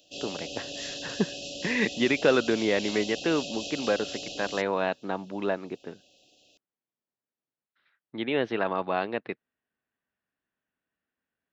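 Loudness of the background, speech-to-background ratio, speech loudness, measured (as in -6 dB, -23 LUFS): -36.0 LUFS, 7.5 dB, -28.5 LUFS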